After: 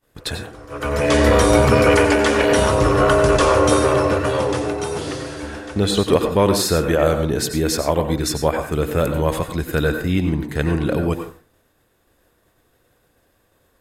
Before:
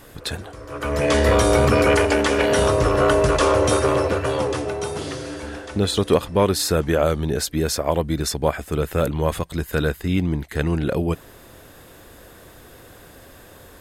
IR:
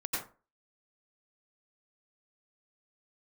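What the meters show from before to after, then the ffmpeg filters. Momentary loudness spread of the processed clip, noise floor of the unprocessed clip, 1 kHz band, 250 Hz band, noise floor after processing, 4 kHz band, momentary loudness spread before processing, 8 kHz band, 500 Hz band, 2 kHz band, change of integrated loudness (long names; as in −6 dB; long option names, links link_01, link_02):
14 LU, −46 dBFS, +3.0 dB, +3.0 dB, −63 dBFS, +2.0 dB, 13 LU, +2.0 dB, +2.5 dB, +3.0 dB, +2.5 dB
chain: -filter_complex "[0:a]agate=range=-33dB:threshold=-32dB:ratio=3:detection=peak,asplit=2[link_01][link_02];[1:a]atrim=start_sample=2205[link_03];[link_02][link_03]afir=irnorm=-1:irlink=0,volume=-7dB[link_04];[link_01][link_04]amix=inputs=2:normalize=0,volume=-1dB"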